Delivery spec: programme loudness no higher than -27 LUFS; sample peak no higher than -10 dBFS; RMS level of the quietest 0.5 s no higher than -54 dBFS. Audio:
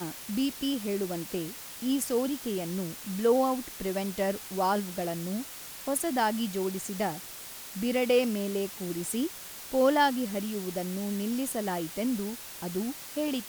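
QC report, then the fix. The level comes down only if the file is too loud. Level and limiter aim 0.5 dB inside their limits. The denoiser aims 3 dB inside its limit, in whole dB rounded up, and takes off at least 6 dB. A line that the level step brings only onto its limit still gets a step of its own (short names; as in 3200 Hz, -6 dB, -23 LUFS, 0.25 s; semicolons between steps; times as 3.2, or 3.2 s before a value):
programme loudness -30.5 LUFS: OK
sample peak -12.5 dBFS: OK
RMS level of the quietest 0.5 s -43 dBFS: fail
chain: denoiser 14 dB, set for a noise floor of -43 dBFS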